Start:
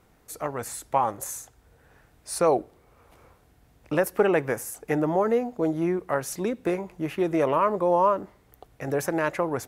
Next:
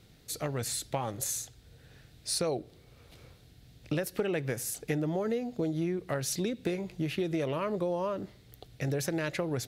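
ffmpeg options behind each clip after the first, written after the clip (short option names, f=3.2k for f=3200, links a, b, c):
-af "equalizer=f=125:t=o:w=1:g=8,equalizer=f=1k:t=o:w=1:g=-11,equalizer=f=4k:t=o:w=1:g=12,acompressor=threshold=-28dB:ratio=6"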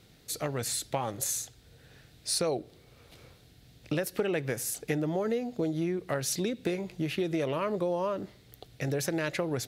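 -af "lowshelf=f=140:g=-5.5,volume=2dB"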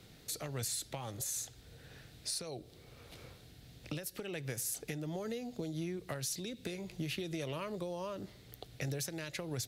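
-filter_complex "[0:a]acrossover=split=120|3000[a][b][c];[b]acompressor=threshold=-43dB:ratio=3[d];[a][d][c]amix=inputs=3:normalize=0,alimiter=level_in=4.5dB:limit=-24dB:level=0:latency=1:release=275,volume=-4.5dB,volume=1dB"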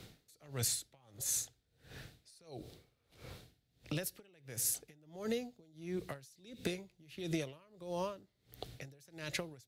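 -af "aeval=exprs='val(0)*pow(10,-29*(0.5-0.5*cos(2*PI*1.5*n/s))/20)':c=same,volume=4.5dB"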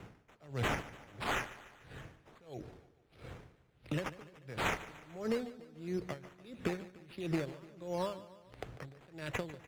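-af "acrusher=samples=9:mix=1:aa=0.000001:lfo=1:lforange=5.4:lforate=1.5,aemphasis=mode=reproduction:type=50kf,aecho=1:1:147|294|441|588|735:0.158|0.0824|0.0429|0.0223|0.0116,volume=2.5dB"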